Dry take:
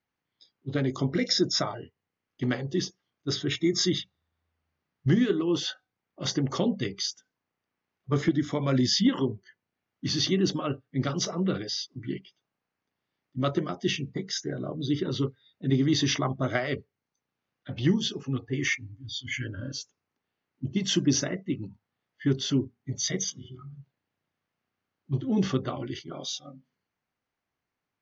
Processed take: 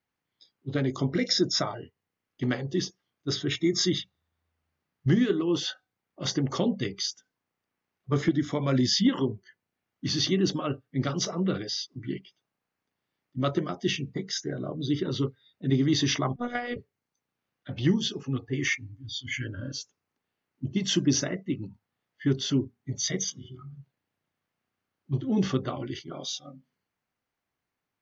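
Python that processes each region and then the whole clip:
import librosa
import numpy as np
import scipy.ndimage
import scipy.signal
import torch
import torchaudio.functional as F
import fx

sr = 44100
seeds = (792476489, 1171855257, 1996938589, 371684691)

y = fx.chain(x, sr, fx.highpass(hz=160.0, slope=12),
    fx.high_shelf(hz=5800.0, db=-10.0),
    fx.robotise(hz=242.0), at=(16.36, 16.76))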